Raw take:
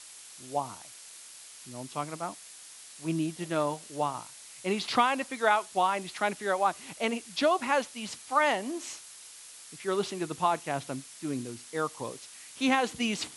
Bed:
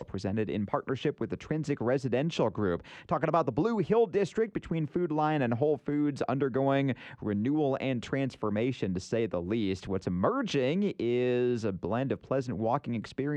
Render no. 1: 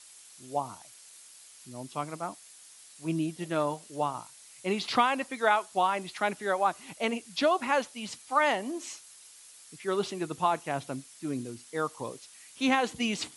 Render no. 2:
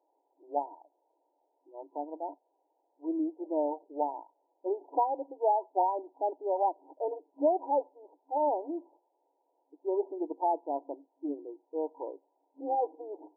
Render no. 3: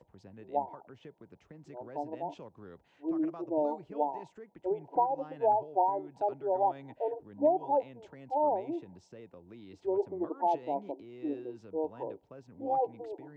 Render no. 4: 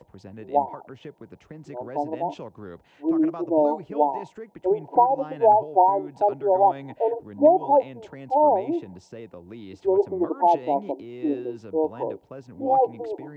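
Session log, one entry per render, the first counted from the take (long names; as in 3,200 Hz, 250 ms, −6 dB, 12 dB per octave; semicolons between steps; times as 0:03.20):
broadband denoise 6 dB, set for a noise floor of −49 dBFS
brick-wall band-pass 270–990 Hz
mix in bed −20.5 dB
level +10 dB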